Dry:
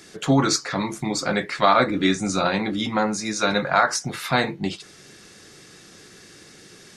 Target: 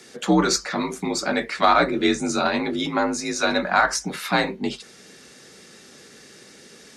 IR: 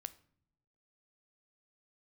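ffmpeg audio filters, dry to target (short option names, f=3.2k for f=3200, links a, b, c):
-af "aeval=exprs='0.631*(cos(1*acos(clip(val(0)/0.631,-1,1)))-cos(1*PI/2))+0.0112*(cos(6*acos(clip(val(0)/0.631,-1,1)))-cos(6*PI/2))':c=same,afreqshift=47"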